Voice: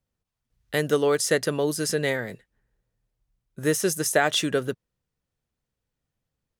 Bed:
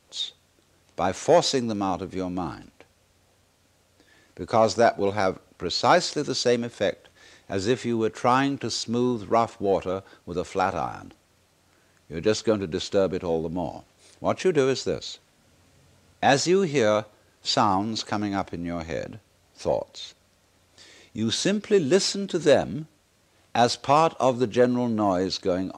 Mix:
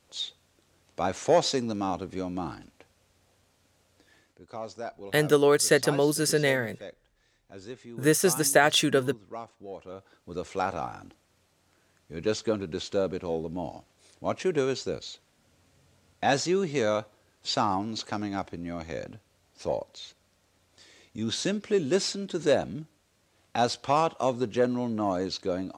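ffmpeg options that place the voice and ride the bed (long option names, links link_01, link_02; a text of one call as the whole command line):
ffmpeg -i stem1.wav -i stem2.wav -filter_complex "[0:a]adelay=4400,volume=1dB[link_01];[1:a]volume=9.5dB,afade=type=out:start_time=4.14:duration=0.27:silence=0.188365,afade=type=in:start_time=9.8:duration=0.67:silence=0.223872[link_02];[link_01][link_02]amix=inputs=2:normalize=0" out.wav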